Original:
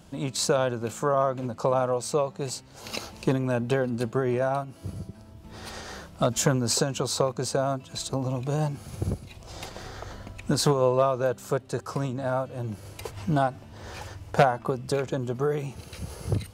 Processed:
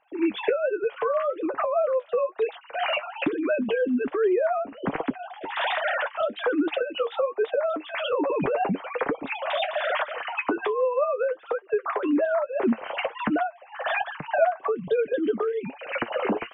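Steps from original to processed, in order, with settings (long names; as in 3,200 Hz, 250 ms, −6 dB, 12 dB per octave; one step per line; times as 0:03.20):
three sine waves on the formant tracks
camcorder AGC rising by 64 dB per second
flanger 1.2 Hz, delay 6.1 ms, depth 4.7 ms, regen +46%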